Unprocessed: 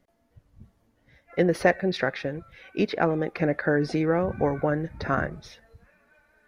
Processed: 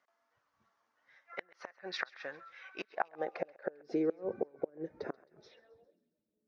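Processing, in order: flipped gate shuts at -14 dBFS, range -31 dB; low-pass sweep 6000 Hz -> 190 Hz, 5.43–6.04; tilt +2.5 dB/oct; band-pass sweep 1200 Hz -> 410 Hz, 2.69–3.85; on a send: thinning echo 0.133 s, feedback 56%, high-pass 790 Hz, level -21 dB; on the sum: gain +2 dB

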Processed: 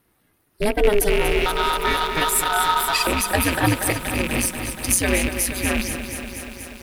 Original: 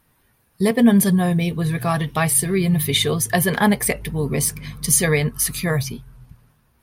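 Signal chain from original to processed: rattling part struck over -25 dBFS, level -12 dBFS; ring modulator 210 Hz, from 1.46 s 1100 Hz, from 3.07 s 93 Hz; lo-fi delay 0.24 s, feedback 80%, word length 7-bit, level -9 dB

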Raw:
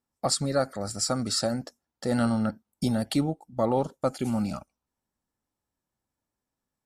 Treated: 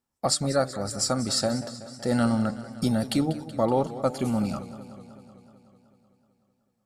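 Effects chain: de-hum 147.1 Hz, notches 5; warbling echo 0.188 s, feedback 69%, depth 112 cents, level -15 dB; gain +1.5 dB

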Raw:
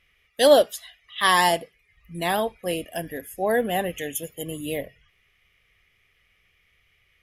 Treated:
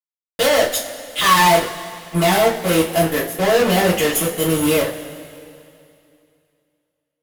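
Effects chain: fuzz box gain 36 dB, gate -37 dBFS; two-slope reverb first 0.26 s, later 2.6 s, from -19 dB, DRR -7 dB; gain -7 dB

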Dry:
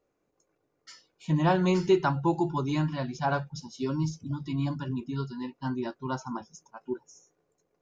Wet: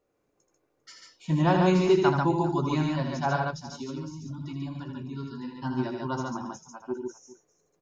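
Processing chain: 3.36–5.48 compressor 4:1, threshold -36 dBFS, peak gain reduction 10.5 dB; tapped delay 80/142/399 ms -6.5/-3/-18 dB

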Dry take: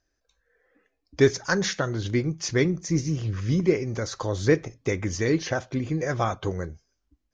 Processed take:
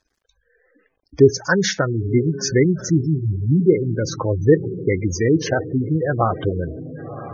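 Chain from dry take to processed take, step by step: diffused feedback echo 1.04 s, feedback 40%, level -13 dB; bit-crush 12-bit; spectral gate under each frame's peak -15 dB strong; gain +7 dB

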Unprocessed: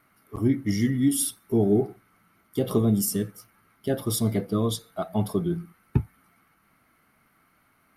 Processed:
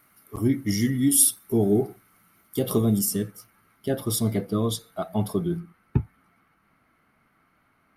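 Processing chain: high shelf 5300 Hz +11 dB, from 2.99 s +2 dB, from 5.6 s -11 dB

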